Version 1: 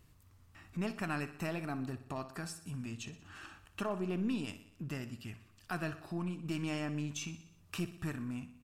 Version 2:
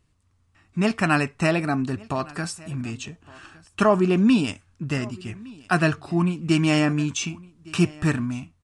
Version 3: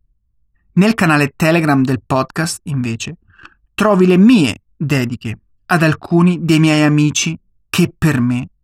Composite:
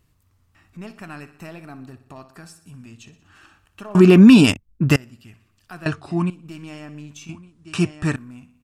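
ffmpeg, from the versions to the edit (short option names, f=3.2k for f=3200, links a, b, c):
-filter_complex "[1:a]asplit=2[a][b];[0:a]asplit=4[c][d][e][f];[c]atrim=end=3.952[g];[2:a]atrim=start=3.948:end=4.962[h];[d]atrim=start=4.958:end=5.862[i];[a]atrim=start=5.858:end=6.302[j];[e]atrim=start=6.298:end=7.292[k];[b]atrim=start=7.288:end=8.162[l];[f]atrim=start=8.158[m];[g][h]acrossfade=d=0.004:c1=hsin:c2=hsin[n];[n][i]acrossfade=d=0.004:c1=hsin:c2=hsin[o];[o][j]acrossfade=d=0.004:c1=hsin:c2=hsin[p];[p][k]acrossfade=d=0.004:c1=hsin:c2=hsin[q];[q][l]acrossfade=d=0.004:c1=hsin:c2=hsin[r];[r][m]acrossfade=d=0.004:c1=hsin:c2=hsin"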